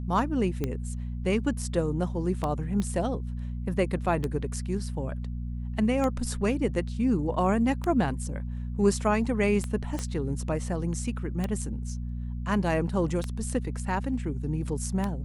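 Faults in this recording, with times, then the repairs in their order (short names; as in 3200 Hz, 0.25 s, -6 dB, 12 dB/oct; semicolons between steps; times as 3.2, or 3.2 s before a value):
hum 60 Hz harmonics 4 -33 dBFS
tick 33 1/3 rpm -16 dBFS
2.8 pop -19 dBFS
9.99 pop -18 dBFS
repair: de-click; de-hum 60 Hz, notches 4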